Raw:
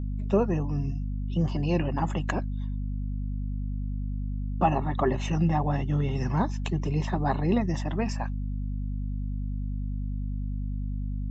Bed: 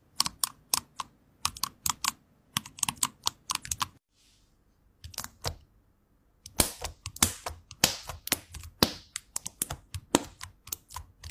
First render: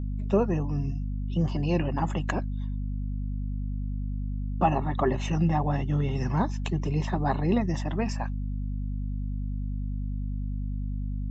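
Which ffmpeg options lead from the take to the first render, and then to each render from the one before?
-af anull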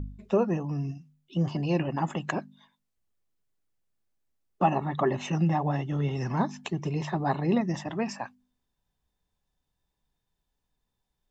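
-af "bandreject=f=50:t=h:w=4,bandreject=f=100:t=h:w=4,bandreject=f=150:t=h:w=4,bandreject=f=200:t=h:w=4,bandreject=f=250:t=h:w=4"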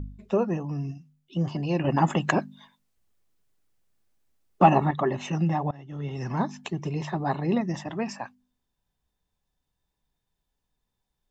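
-filter_complex "[0:a]asettb=1/sr,asplit=3[s0][s1][s2];[s0]atrim=end=1.844[s3];[s1]atrim=start=1.84:end=4.91,asetpts=PTS-STARTPTS,afade=t=in:d=0.004:c=qsin,afade=t=out:st=3.066:d=0.004:c=qsin,acontrast=85[s4];[s2]atrim=start=4.906[s5];[s3][s4]acrossfade=d=0.004:c1=hsin:c2=qsin[s6];[s6][s5]acrossfade=d=0.004:c1=qsin:c2=hsin,asplit=2[s7][s8];[s7]atrim=end=5.71,asetpts=PTS-STARTPTS,afade=t=out:st=5.706:d=0.004:c=hsin:silence=0.0749894[s9];[s8]atrim=start=5.71,asetpts=PTS-STARTPTS,afade=t=in:d=0.62:silence=0.0749894[s10];[s9][s10]concat=n=2:v=0:a=1"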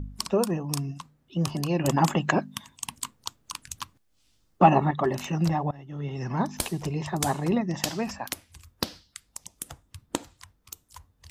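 -filter_complex "[1:a]volume=0.501[s0];[0:a][s0]amix=inputs=2:normalize=0"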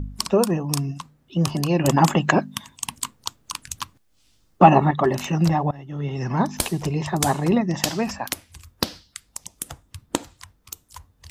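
-af "volume=1.88,alimiter=limit=0.891:level=0:latency=1"

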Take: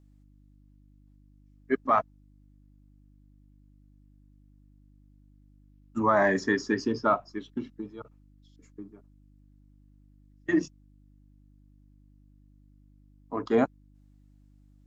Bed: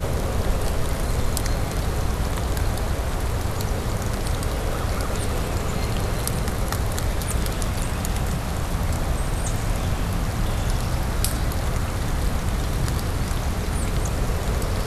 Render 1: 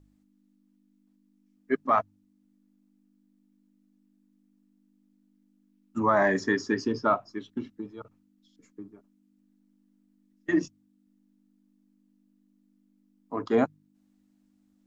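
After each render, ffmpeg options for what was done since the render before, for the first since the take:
-af "bandreject=f=50:t=h:w=4,bandreject=f=100:t=h:w=4,bandreject=f=150:t=h:w=4"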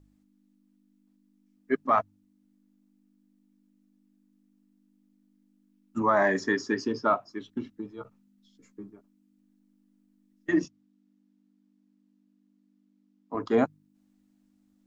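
-filter_complex "[0:a]asettb=1/sr,asplit=3[s0][s1][s2];[s0]atrim=end=6.024[s3];[s1]atrim=start=6.02:end=7.4,asetpts=PTS-STARTPTS,afade=t=in:d=0.004:c=qsin,afade=t=out:st=1.376:d=0.004:c=qsin,lowshelf=f=100:g=-11.5[s4];[s2]atrim=start=7.396[s5];[s3][s4]acrossfade=d=0.004:c1=hsin:c2=qsin[s6];[s6][s5]acrossfade=d=0.004:c1=qsin:c2=hsin,asettb=1/sr,asplit=3[s7][s8][s9];[s7]atrim=end=7.974[s10];[s8]atrim=start=7.97:end=8.91,asetpts=PTS-STARTPTS,afade=t=in:d=0.004:c=qsin,afade=t=out:st=0.936:d=0.004:c=qsin,asplit=2[s11][s12];[s12]adelay=15,volume=0.501[s13];[s11][s13]amix=inputs=2:normalize=0,atrim=end_sample=41454[s14];[s9]atrim=start=8.906[s15];[s10][s14]acrossfade=d=0.004:c1=hsin:c2=qsin[s16];[s16][s15]acrossfade=d=0.004:c1=qsin:c2=hsin,asettb=1/sr,asplit=3[s17][s18][s19];[s17]atrim=end=10.644[s20];[s18]atrim=start=10.64:end=13.35,asetpts=PTS-STARTPTS,afade=t=in:d=0.004:c=qsin,afade=t=out:st=2.706:d=0.004:c=qsin,highpass=140,lowpass=6000[s21];[s19]atrim=start=13.346[s22];[s20][s21]acrossfade=d=0.004:c1=hsin:c2=qsin[s23];[s23][s22]acrossfade=d=0.004:c1=qsin:c2=hsin"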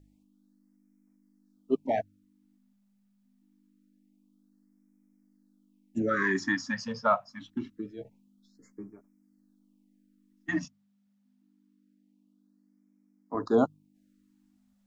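-af "afftfilt=real='re*(1-between(b*sr/1024,330*pow(3600/330,0.5+0.5*sin(2*PI*0.25*pts/sr))/1.41,330*pow(3600/330,0.5+0.5*sin(2*PI*0.25*pts/sr))*1.41))':imag='im*(1-between(b*sr/1024,330*pow(3600/330,0.5+0.5*sin(2*PI*0.25*pts/sr))/1.41,330*pow(3600/330,0.5+0.5*sin(2*PI*0.25*pts/sr))*1.41))':win_size=1024:overlap=0.75"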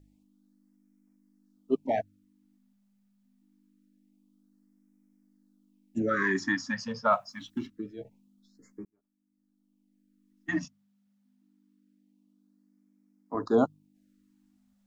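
-filter_complex "[0:a]asettb=1/sr,asplit=3[s0][s1][s2];[s0]atrim=end=7.124[s3];[s1]atrim=start=7.12:end=7.67,asetpts=PTS-STARTPTS,afade=t=in:d=0.004:c=qsin,afade=t=out:st=0.546:d=0.004:c=qsin,highshelf=f=3400:g=11[s4];[s2]atrim=start=7.666[s5];[s3][s4]acrossfade=d=0.004:c1=hsin:c2=qsin[s6];[s6][s5]acrossfade=d=0.004:c1=qsin:c2=hsin,asplit=2[s7][s8];[s7]atrim=end=8.85,asetpts=PTS-STARTPTS,afade=t=out:st=8.846:d=0.004:c=hsin[s9];[s8]atrim=start=8.85,asetpts=PTS-STARTPTS,afade=t=in:d=1.65[s10];[s9][s10]concat=n=2:v=0:a=1"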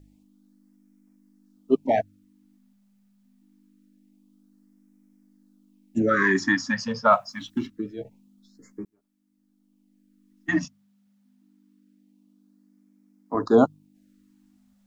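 -af "volume=2.11"

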